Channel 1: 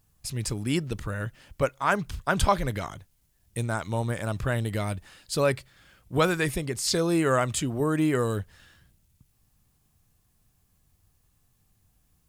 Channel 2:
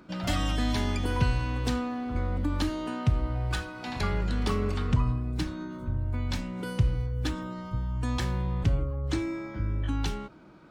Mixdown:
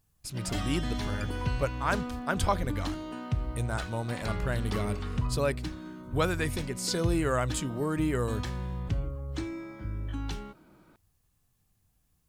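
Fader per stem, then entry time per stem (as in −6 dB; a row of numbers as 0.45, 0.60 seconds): −5.0, −5.5 decibels; 0.00, 0.25 seconds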